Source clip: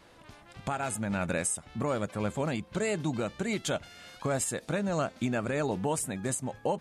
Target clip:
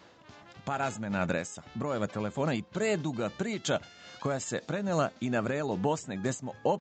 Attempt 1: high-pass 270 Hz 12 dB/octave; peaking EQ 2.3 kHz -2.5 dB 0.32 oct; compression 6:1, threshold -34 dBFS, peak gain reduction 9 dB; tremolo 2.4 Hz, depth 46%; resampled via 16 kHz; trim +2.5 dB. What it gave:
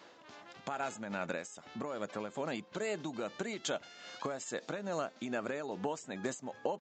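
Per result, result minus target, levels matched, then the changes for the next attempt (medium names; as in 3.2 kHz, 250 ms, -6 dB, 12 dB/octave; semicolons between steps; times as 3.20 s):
compression: peak gain reduction +9 dB; 125 Hz band -7.0 dB
remove: compression 6:1, threshold -34 dBFS, peak gain reduction 9 dB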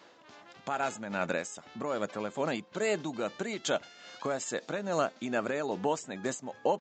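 125 Hz band -8.0 dB
change: high-pass 95 Hz 12 dB/octave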